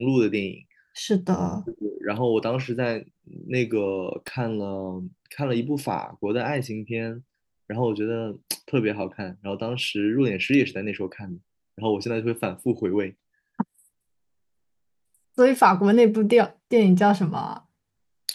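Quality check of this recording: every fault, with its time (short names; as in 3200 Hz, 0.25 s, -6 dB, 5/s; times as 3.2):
4.28 pop -18 dBFS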